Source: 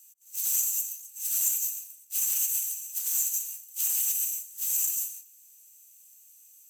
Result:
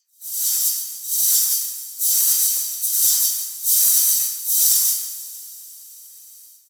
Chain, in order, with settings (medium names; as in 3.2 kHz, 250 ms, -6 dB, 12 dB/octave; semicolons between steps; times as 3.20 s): delay that grows with frequency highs early, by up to 132 ms; high-pass 520 Hz 12 dB/octave; level rider gain up to 14.5 dB; Butterworth band-stop 860 Hz, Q 3.4; static phaser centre 1.4 kHz, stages 4; in parallel at -9 dB: crossover distortion -39 dBFS; on the sum: harmony voices -12 st -14 dB, -5 st -3 dB; two-slope reverb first 0.27 s, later 3.1 s, from -18 dB, DRR -0.5 dB; trim -7 dB